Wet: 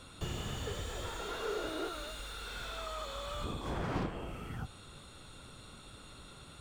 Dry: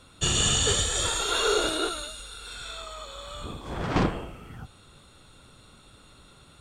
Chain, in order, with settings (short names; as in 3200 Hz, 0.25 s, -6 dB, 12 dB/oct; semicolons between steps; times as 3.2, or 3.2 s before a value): compressor 4:1, threshold -35 dBFS, peak gain reduction 13.5 dB; slew limiter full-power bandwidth 18 Hz; gain +1 dB